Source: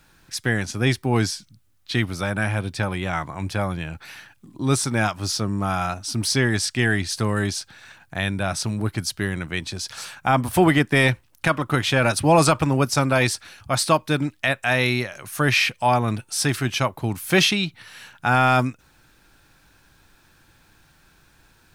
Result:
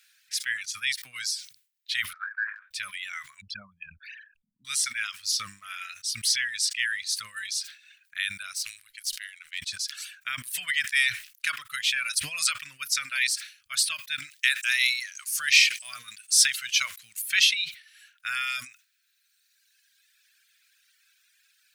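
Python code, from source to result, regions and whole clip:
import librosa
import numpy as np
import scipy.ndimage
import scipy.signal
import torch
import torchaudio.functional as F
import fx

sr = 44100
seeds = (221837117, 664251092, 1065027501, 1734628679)

y = fx.chain(x, sr, fx.cheby1_bandpass(low_hz=800.0, high_hz=1700.0, order=3),
    fx.transient(attack_db=11, sustain_db=2), at=(2.13, 2.71))
y = fx.chain(y, sr, fx.envelope_sharpen(power=3.0),
    fx.small_body(hz=(210.0, 970.0), ring_ms=70, db=15), at=(3.41, 4.65))
y = fx.chain(y, sr, fx.halfwave_gain(db=-7.0),
    fx.tone_stack(knobs='10-0-10'), at=(8.55, 9.59))
y = fx.chain(y, sr, fx.law_mismatch(coded='mu'),
    fx.highpass(hz=110.0, slope=12),
    fx.peak_eq(hz=6900.0, db=7.0, octaves=1.6), at=(14.31, 17.22))
y = scipy.signal.sosfilt(scipy.signal.cheby2(4, 40, 910.0, 'highpass', fs=sr, output='sos'), y)
y = fx.dereverb_blind(y, sr, rt60_s=2.0)
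y = fx.sustainer(y, sr, db_per_s=140.0)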